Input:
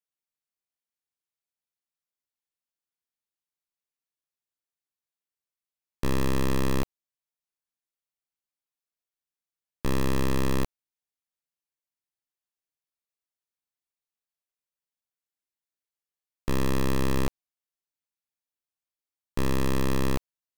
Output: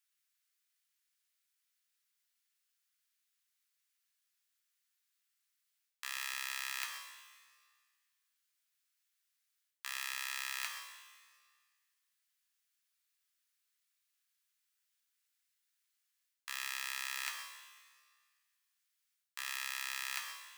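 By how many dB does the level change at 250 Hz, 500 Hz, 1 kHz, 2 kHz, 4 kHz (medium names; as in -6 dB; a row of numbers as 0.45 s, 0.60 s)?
under -40 dB, -37.0 dB, -12.0 dB, -1.0 dB, -1.5 dB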